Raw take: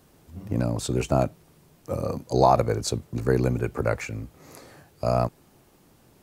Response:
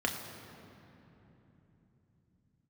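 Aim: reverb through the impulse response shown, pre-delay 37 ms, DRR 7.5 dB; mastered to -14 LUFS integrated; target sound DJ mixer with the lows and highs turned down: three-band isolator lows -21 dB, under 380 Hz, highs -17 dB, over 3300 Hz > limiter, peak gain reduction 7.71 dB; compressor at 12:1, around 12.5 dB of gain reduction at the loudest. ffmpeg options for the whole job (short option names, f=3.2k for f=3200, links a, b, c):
-filter_complex "[0:a]acompressor=threshold=-25dB:ratio=12,asplit=2[a][b];[1:a]atrim=start_sample=2205,adelay=37[c];[b][c]afir=irnorm=-1:irlink=0,volume=-15dB[d];[a][d]amix=inputs=2:normalize=0,acrossover=split=380 3300:gain=0.0891 1 0.141[e][f][g];[e][f][g]amix=inputs=3:normalize=0,volume=26dB,alimiter=limit=-0.5dB:level=0:latency=1"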